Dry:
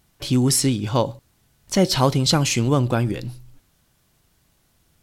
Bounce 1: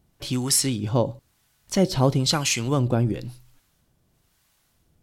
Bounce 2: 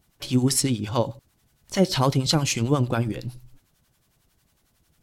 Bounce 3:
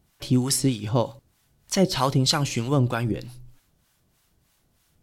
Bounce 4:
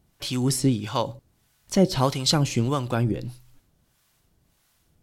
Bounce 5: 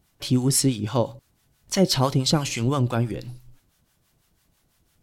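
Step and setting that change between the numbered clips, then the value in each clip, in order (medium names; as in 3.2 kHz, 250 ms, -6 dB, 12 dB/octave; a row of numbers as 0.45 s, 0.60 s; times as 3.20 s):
harmonic tremolo, rate: 1 Hz, 11 Hz, 3.2 Hz, 1.6 Hz, 6 Hz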